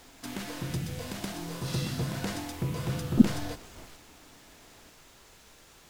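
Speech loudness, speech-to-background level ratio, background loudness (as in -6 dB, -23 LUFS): -26.5 LUFS, 8.5 dB, -35.0 LUFS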